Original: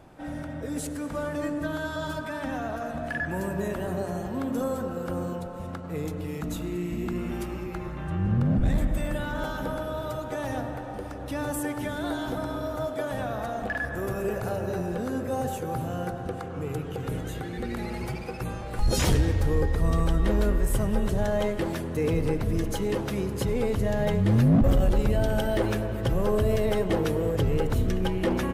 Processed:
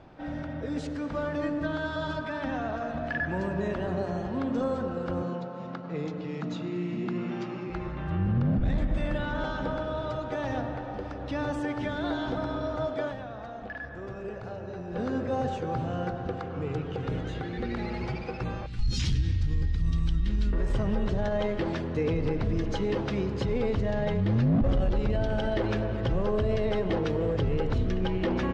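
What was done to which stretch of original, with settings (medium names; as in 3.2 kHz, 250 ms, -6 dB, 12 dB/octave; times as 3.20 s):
5.22–7.70 s: Chebyshev band-pass 120–7200 Hz, order 5
13.08–14.98 s: dip -8.5 dB, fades 0.41 s exponential
18.66–20.53 s: FFT filter 130 Hz 0 dB, 270 Hz -7 dB, 570 Hz -26 dB, 1.1 kHz -16 dB, 2.9 kHz -2 dB, 5.3 kHz +1 dB, 13 kHz +6 dB
whole clip: low-pass 5.1 kHz 24 dB/octave; peak limiter -19 dBFS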